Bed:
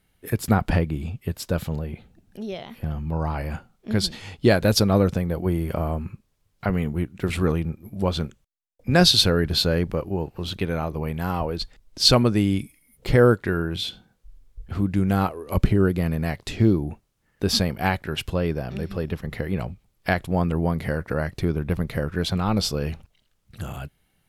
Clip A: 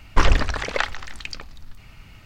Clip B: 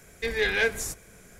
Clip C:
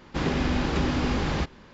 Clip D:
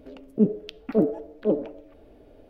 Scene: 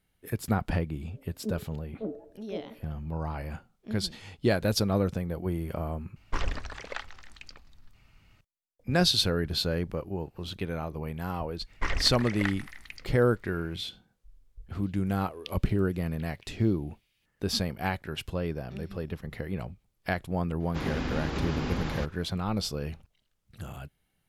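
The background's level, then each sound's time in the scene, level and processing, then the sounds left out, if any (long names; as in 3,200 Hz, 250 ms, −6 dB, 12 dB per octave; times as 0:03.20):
bed −7.5 dB
0:01.06: mix in D −14.5 dB + low-pass filter 1,900 Hz
0:06.16: overwrite with A −14 dB
0:11.65: mix in A −14.5 dB, fades 0.05 s + parametric band 2,000 Hz +11 dB 0.41 octaves
0:14.77: mix in D + Butterworth high-pass 2,100 Hz
0:20.60: mix in C −6.5 dB
not used: B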